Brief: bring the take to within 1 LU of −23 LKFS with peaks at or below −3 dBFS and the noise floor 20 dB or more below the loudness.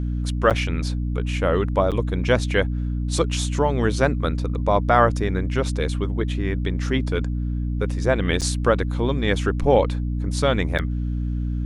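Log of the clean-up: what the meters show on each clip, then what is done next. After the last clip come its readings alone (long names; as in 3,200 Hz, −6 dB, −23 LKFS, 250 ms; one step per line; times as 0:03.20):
number of dropouts 4; longest dropout 7.6 ms; mains hum 60 Hz; hum harmonics up to 300 Hz; level of the hum −22 dBFS; integrated loudness −22.5 LKFS; sample peak −2.5 dBFS; target loudness −23.0 LKFS
→ repair the gap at 0:00.50/0:01.91/0:08.41/0:10.78, 7.6 ms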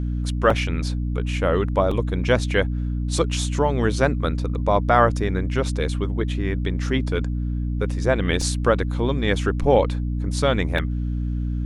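number of dropouts 0; mains hum 60 Hz; hum harmonics up to 300 Hz; level of the hum −22 dBFS
→ hum removal 60 Hz, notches 5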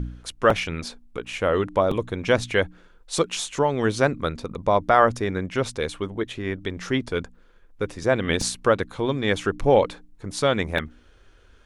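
mains hum none found; integrated loudness −24.0 LKFS; sample peak −3.0 dBFS; target loudness −23.0 LKFS
→ level +1 dB
brickwall limiter −3 dBFS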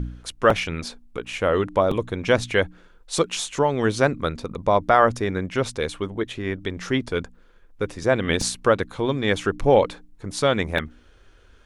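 integrated loudness −23.0 LKFS; sample peak −3.0 dBFS; background noise floor −52 dBFS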